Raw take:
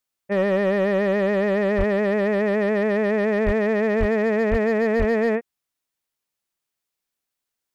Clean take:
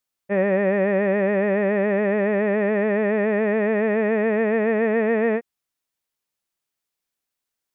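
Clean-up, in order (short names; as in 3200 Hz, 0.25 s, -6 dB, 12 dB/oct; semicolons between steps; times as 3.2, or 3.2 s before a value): clip repair -14 dBFS; de-plosive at 1.77/3.45/3.99/4.5/4.98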